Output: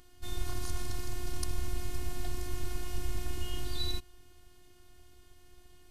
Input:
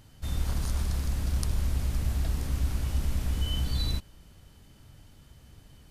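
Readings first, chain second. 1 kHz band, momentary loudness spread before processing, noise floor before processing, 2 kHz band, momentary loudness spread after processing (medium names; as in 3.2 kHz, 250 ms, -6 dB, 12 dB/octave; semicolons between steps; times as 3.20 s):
-1.0 dB, 2 LU, -56 dBFS, -2.0 dB, 4 LU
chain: robot voice 358 Hz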